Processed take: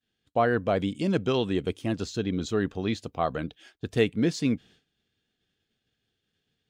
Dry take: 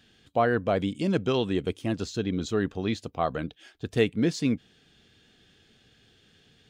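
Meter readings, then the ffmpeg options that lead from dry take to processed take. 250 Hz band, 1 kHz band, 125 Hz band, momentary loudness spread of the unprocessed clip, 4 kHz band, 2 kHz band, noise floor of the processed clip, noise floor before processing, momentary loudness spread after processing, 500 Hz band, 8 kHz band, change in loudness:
0.0 dB, 0.0 dB, 0.0 dB, 7 LU, 0.0 dB, 0.0 dB, −81 dBFS, −62 dBFS, 7 LU, 0.0 dB, 0.0 dB, 0.0 dB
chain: -af "agate=range=-33dB:threshold=-48dB:ratio=3:detection=peak"

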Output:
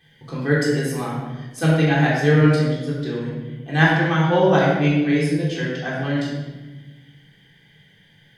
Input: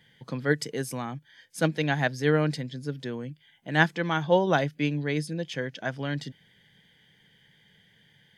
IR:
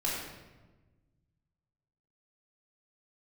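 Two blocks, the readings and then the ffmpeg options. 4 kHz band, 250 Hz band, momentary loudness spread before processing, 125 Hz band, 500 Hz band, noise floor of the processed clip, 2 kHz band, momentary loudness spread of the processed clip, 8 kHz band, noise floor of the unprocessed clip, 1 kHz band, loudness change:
+5.5 dB, +10.0 dB, 14 LU, +11.0 dB, +7.0 dB, −54 dBFS, +6.5 dB, 14 LU, +4.5 dB, −62 dBFS, +6.5 dB, +8.0 dB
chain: -filter_complex "[1:a]atrim=start_sample=2205[link_01];[0:a][link_01]afir=irnorm=-1:irlink=0"

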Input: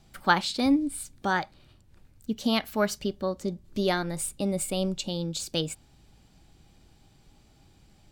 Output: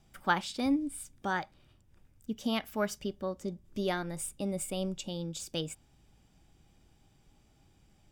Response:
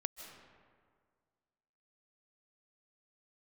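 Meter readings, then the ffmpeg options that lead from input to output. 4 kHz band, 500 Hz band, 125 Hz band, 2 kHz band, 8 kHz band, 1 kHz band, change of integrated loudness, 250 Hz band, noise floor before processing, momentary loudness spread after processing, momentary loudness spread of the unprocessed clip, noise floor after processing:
−8.0 dB, −6.0 dB, −6.0 dB, −6.0 dB, −6.0 dB, −6.0 dB, −6.0 dB, −6.0 dB, −59 dBFS, 10 LU, 10 LU, −65 dBFS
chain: -af "bandreject=frequency=4200:width=5.5,volume=-6dB"

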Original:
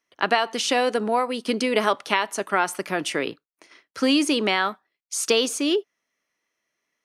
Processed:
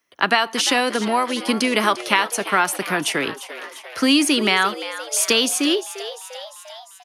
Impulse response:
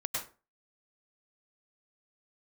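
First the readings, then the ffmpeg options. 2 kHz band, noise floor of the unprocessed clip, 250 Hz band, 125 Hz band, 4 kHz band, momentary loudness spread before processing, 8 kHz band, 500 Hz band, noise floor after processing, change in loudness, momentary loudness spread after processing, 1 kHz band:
+5.5 dB, below −85 dBFS, +3.5 dB, +5.0 dB, +6.0 dB, 7 LU, +7.0 dB, 0.0 dB, −45 dBFS, +4.0 dB, 17 LU, +3.0 dB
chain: -filter_complex "[0:a]acrossover=split=350|770|4300[link_01][link_02][link_03][link_04];[link_02]acompressor=threshold=-40dB:ratio=6[link_05];[link_01][link_05][link_03][link_04]amix=inputs=4:normalize=0,aexciter=amount=1.7:drive=6.7:freq=9900,asplit=8[link_06][link_07][link_08][link_09][link_10][link_11][link_12][link_13];[link_07]adelay=348,afreqshift=110,volume=-14dB[link_14];[link_08]adelay=696,afreqshift=220,volume=-17.9dB[link_15];[link_09]adelay=1044,afreqshift=330,volume=-21.8dB[link_16];[link_10]adelay=1392,afreqshift=440,volume=-25.6dB[link_17];[link_11]adelay=1740,afreqshift=550,volume=-29.5dB[link_18];[link_12]adelay=2088,afreqshift=660,volume=-33.4dB[link_19];[link_13]adelay=2436,afreqshift=770,volume=-37.3dB[link_20];[link_06][link_14][link_15][link_16][link_17][link_18][link_19][link_20]amix=inputs=8:normalize=0,volume=5.5dB"

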